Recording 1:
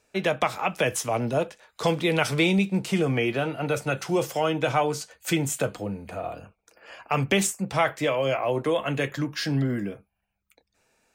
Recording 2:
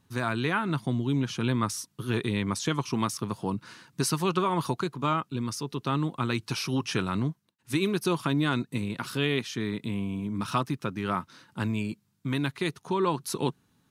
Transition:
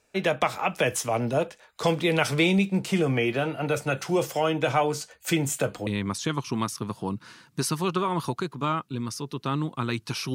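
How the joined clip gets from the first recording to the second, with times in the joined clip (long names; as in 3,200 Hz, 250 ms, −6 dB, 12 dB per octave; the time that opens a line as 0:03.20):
recording 1
0:05.87: continue with recording 2 from 0:02.28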